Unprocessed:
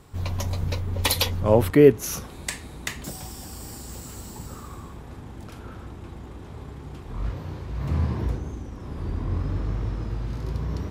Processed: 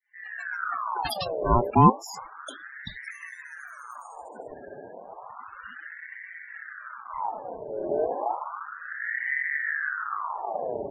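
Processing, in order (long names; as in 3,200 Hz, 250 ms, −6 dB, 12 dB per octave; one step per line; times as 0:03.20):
fade in at the beginning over 0.81 s
spectral peaks only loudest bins 16
ring modulator whose carrier an LFO sweeps 1,200 Hz, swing 60%, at 0.32 Hz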